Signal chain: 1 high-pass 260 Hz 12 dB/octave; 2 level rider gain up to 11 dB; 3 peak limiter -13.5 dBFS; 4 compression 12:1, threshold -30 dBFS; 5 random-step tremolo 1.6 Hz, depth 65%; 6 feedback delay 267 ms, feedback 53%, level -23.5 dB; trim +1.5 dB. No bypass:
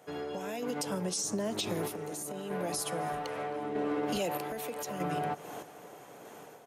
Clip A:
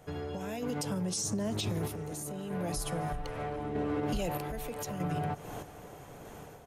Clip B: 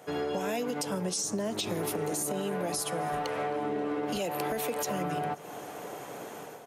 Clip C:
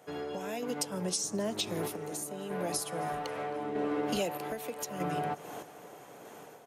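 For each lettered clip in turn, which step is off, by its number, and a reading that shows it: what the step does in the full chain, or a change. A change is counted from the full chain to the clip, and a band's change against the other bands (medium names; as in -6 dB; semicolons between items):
1, 125 Hz band +8.5 dB; 5, momentary loudness spread change -6 LU; 3, crest factor change +4.5 dB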